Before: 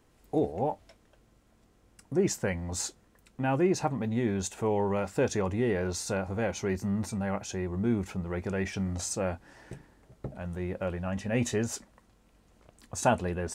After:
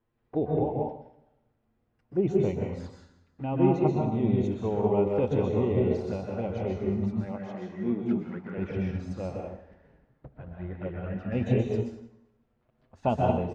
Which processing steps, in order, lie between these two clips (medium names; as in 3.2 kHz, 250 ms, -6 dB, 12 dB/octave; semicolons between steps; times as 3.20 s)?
7.07–8.58 s: high-pass 150 Hz 24 dB/octave; touch-sensitive flanger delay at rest 9.3 ms, full sweep at -27.5 dBFS; distance through air 330 m; feedback delay 185 ms, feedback 35%, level -18.5 dB; plate-style reverb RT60 0.87 s, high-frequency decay 0.8×, pre-delay 115 ms, DRR -1.5 dB; upward expansion 1.5:1, over -46 dBFS; trim +3 dB